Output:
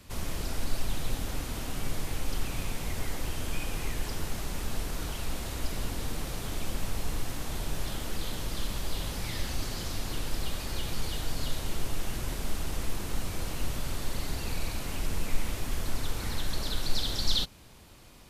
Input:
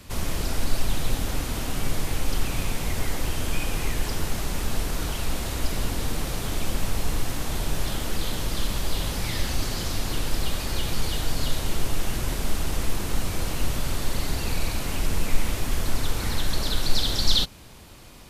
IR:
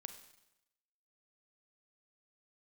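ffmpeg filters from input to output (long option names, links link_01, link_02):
-af "volume=-6.5dB"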